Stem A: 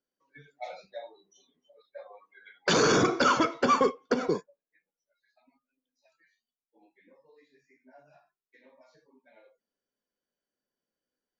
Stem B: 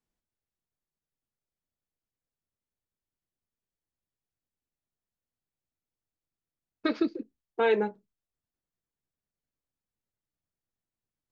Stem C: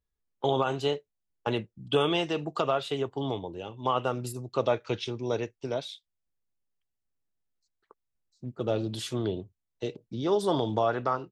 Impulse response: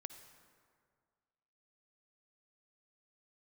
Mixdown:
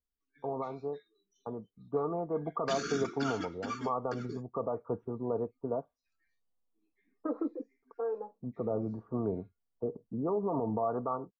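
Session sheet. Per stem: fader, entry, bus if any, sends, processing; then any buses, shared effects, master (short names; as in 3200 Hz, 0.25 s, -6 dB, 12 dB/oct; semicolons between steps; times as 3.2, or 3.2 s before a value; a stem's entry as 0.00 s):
-13.0 dB, 0.00 s, no bus, no send, Chebyshev band-stop 420–1200 Hz, order 5
0.0 dB, 0.40 s, bus A, no send, HPF 350 Hz 24 dB/oct; comb 3.8 ms, depth 83%; auto duck -11 dB, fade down 0.30 s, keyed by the third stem
1.74 s -9.5 dB -> 2.5 s -1 dB, 0.00 s, bus A, no send, dry
bus A: 0.0 dB, Chebyshev low-pass 1200 Hz, order 5; limiter -22.5 dBFS, peak gain reduction 8 dB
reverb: off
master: comb 4.3 ms, depth 39%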